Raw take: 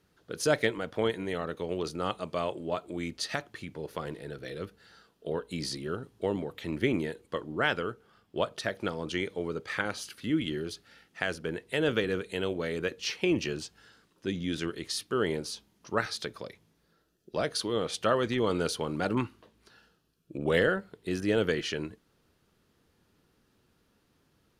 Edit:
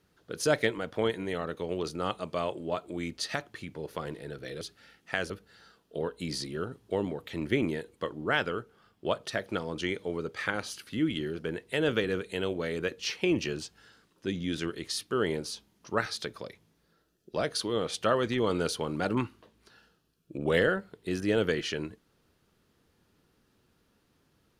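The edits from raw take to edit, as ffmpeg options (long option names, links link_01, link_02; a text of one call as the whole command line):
ffmpeg -i in.wav -filter_complex "[0:a]asplit=4[link_01][link_02][link_03][link_04];[link_01]atrim=end=4.612[link_05];[link_02]atrim=start=10.688:end=11.382[link_06];[link_03]atrim=start=4.608:end=10.692[link_07];[link_04]atrim=start=11.378[link_08];[link_05][link_06]acrossfade=duration=0.004:curve1=hsin:curve2=hsin[link_09];[link_09][link_07]acrossfade=duration=0.004:curve1=hsin:curve2=hsin[link_10];[link_10][link_08]acrossfade=duration=0.004:curve1=hsin:curve2=hsin" out.wav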